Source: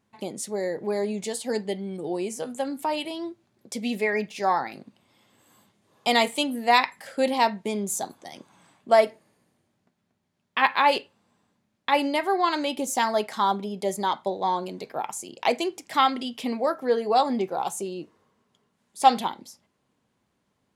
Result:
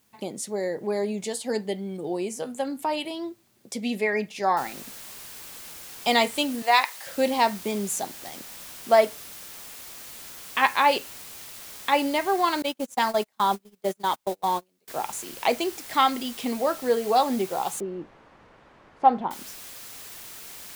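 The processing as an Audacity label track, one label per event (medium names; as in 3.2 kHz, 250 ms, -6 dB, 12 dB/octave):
4.570000	4.570000	noise floor step -67 dB -42 dB
6.620000	7.070000	high-pass 540 Hz
12.620000	14.880000	gate -28 dBFS, range -36 dB
17.800000	19.310000	low-pass 1.2 kHz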